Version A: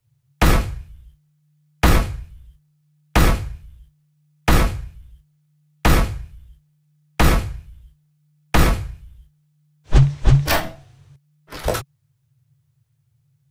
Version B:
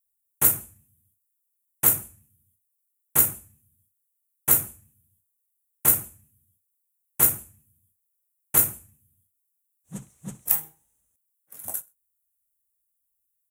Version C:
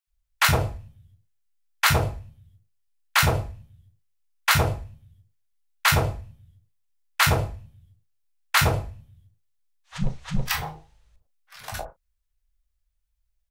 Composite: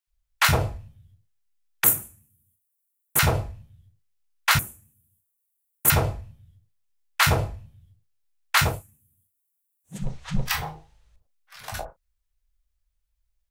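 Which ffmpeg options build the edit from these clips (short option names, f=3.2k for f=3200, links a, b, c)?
-filter_complex "[1:a]asplit=3[a][b][c];[2:a]asplit=4[d][e][f][g];[d]atrim=end=1.842[h];[a]atrim=start=1.838:end=3.192[i];[e]atrim=start=3.188:end=4.592[j];[b]atrim=start=4.588:end=5.902[k];[f]atrim=start=5.898:end=8.84[l];[c]atrim=start=8.6:end=10.15[m];[g]atrim=start=9.91[n];[h][i]acrossfade=d=0.004:c1=hsin:c2=hsin[o];[o][j]acrossfade=d=0.004:c1=hsin:c2=hsin[p];[p][k]acrossfade=d=0.004:c1=hsin:c2=hsin[q];[q][l]acrossfade=d=0.004:c1=hsin:c2=hsin[r];[r][m]acrossfade=d=0.24:c1=tri:c2=tri[s];[s][n]acrossfade=d=0.24:c1=tri:c2=tri"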